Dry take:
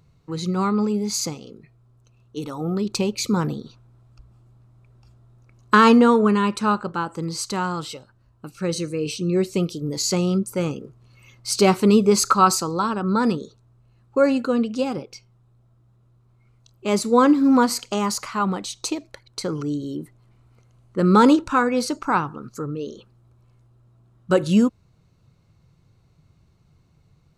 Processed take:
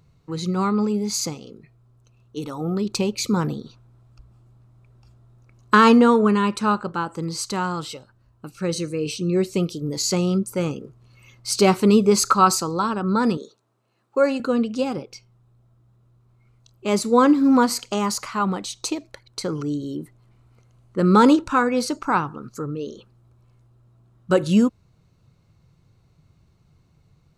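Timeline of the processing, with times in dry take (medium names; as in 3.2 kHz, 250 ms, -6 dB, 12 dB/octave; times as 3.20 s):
13.37–14.40 s: high-pass 320 Hz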